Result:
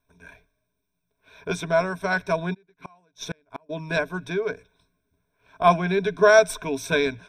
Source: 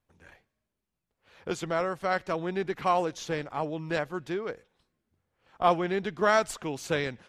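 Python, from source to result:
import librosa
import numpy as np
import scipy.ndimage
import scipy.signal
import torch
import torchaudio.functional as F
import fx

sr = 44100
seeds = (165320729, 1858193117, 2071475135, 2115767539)

y = fx.ripple_eq(x, sr, per_octave=1.6, db=17)
y = fx.gate_flip(y, sr, shuts_db=-22.0, range_db=-36, at=(2.53, 3.69), fade=0.02)
y = y * 10.0 ** (2.5 / 20.0)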